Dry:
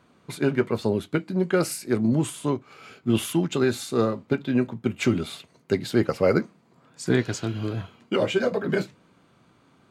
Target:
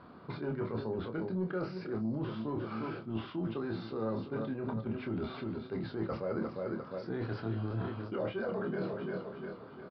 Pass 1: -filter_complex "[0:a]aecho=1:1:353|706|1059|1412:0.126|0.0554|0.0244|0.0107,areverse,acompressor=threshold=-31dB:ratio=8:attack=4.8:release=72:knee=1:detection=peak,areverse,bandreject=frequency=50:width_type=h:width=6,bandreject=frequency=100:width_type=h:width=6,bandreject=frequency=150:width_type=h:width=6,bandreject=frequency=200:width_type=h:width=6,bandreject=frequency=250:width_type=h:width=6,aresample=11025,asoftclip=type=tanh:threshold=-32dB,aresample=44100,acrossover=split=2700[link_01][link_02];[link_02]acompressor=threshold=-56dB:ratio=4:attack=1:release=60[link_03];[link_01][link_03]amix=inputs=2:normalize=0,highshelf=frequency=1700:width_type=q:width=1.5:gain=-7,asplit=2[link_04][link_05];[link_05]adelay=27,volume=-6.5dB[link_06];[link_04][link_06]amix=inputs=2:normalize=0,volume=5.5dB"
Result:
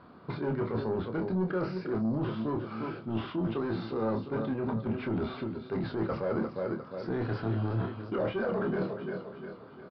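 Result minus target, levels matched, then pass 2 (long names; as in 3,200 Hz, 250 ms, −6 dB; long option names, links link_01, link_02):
downward compressor: peak gain reduction −7 dB
-filter_complex "[0:a]aecho=1:1:353|706|1059|1412:0.126|0.0554|0.0244|0.0107,areverse,acompressor=threshold=-39dB:ratio=8:attack=4.8:release=72:knee=1:detection=peak,areverse,bandreject=frequency=50:width_type=h:width=6,bandreject=frequency=100:width_type=h:width=6,bandreject=frequency=150:width_type=h:width=6,bandreject=frequency=200:width_type=h:width=6,bandreject=frequency=250:width_type=h:width=6,aresample=11025,asoftclip=type=tanh:threshold=-32dB,aresample=44100,acrossover=split=2700[link_01][link_02];[link_02]acompressor=threshold=-56dB:ratio=4:attack=1:release=60[link_03];[link_01][link_03]amix=inputs=2:normalize=0,highshelf=frequency=1700:width_type=q:width=1.5:gain=-7,asplit=2[link_04][link_05];[link_05]adelay=27,volume=-6.5dB[link_06];[link_04][link_06]amix=inputs=2:normalize=0,volume=5.5dB"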